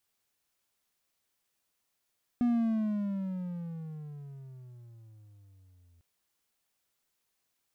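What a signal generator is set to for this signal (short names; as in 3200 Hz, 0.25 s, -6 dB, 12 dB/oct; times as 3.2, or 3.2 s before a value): gliding synth tone triangle, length 3.60 s, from 244 Hz, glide -18.5 st, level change -37 dB, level -21 dB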